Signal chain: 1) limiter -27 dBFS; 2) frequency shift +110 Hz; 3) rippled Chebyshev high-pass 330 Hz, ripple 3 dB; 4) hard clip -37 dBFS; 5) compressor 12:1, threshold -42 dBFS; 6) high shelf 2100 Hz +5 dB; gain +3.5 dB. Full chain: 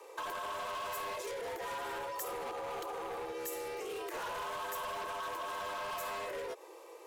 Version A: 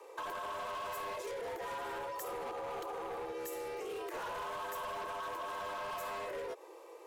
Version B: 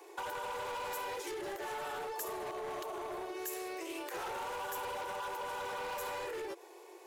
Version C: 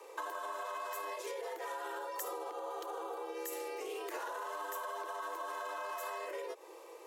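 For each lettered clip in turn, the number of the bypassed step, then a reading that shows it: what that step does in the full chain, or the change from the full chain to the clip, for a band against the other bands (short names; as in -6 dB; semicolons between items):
6, 8 kHz band -4.0 dB; 2, 250 Hz band +4.5 dB; 4, distortion -10 dB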